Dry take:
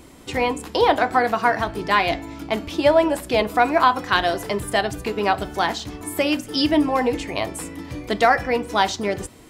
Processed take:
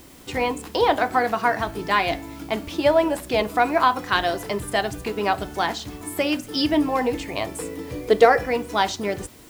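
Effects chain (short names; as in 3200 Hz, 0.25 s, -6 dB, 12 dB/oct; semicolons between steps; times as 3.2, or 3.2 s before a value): 7.58–8.45 bell 450 Hz +14 dB 0.4 oct; in parallel at -12 dB: requantised 6-bit, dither triangular; on the sum: gain -4 dB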